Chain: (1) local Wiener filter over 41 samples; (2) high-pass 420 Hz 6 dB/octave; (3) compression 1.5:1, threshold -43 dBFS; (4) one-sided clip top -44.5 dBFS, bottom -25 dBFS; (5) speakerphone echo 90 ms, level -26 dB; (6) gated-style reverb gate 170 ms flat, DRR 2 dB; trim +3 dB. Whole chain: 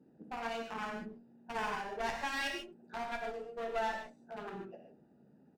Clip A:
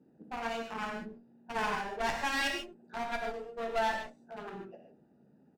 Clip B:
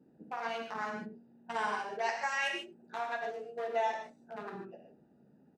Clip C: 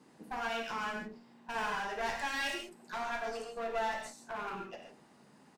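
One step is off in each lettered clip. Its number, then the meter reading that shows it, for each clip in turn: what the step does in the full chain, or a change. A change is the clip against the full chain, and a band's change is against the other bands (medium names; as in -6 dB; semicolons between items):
3, mean gain reduction 3.0 dB; 4, distortion -7 dB; 1, 8 kHz band +3.0 dB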